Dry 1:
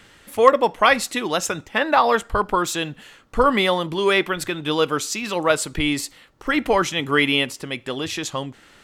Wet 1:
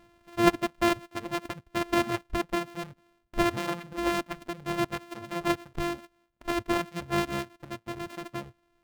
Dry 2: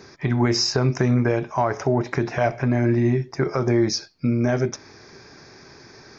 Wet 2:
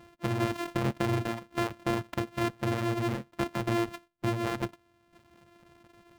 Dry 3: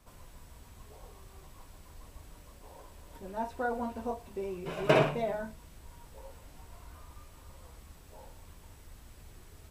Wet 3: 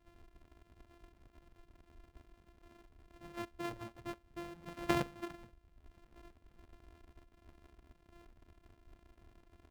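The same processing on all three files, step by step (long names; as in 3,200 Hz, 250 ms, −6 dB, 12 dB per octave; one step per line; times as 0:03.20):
samples sorted by size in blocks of 128 samples
reverb reduction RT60 1 s
bass and treble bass +1 dB, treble −8 dB
level −8 dB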